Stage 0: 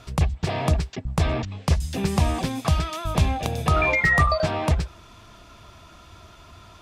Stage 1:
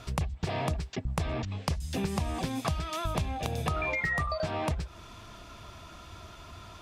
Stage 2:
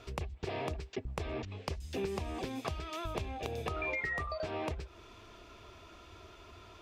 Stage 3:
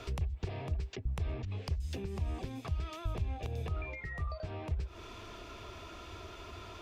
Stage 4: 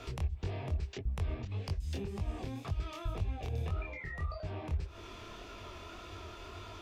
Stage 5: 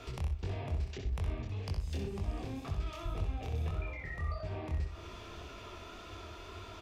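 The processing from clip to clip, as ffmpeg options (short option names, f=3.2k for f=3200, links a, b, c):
-af "acompressor=threshold=-28dB:ratio=6"
-af "equalizer=f=160:t=o:w=0.67:g=-7,equalizer=f=400:t=o:w=0.67:g=10,equalizer=f=2.5k:t=o:w=0.67:g=4,equalizer=f=10k:t=o:w=0.67:g=-6,volume=-7.5dB"
-filter_complex "[0:a]acrossover=split=150[a][b];[b]acompressor=threshold=-51dB:ratio=6[c];[a][c]amix=inputs=2:normalize=0,volume=7dB"
-af "flanger=delay=19.5:depth=7.2:speed=1.8,volume=3dB"
-af "aecho=1:1:64|102|121|317|635|698:0.501|0.188|0.119|0.119|0.112|0.126,volume=-1.5dB"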